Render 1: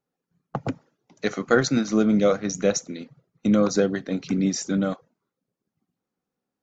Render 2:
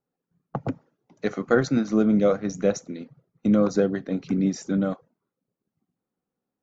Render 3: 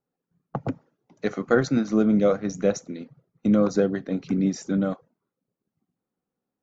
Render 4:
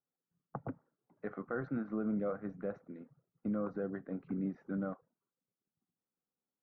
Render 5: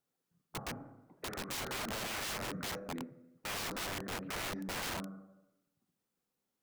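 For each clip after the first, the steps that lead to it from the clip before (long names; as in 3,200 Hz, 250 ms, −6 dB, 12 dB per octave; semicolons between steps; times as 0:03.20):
high-shelf EQ 2,100 Hz −10.5 dB
no processing that can be heard
brickwall limiter −14.5 dBFS, peak gain reduction 7 dB; transistor ladder low-pass 1,800 Hz, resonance 35%; level −6 dB
four-comb reverb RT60 0.99 s, combs from 28 ms, DRR 11 dB; wrap-around overflow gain 41 dB; level +7 dB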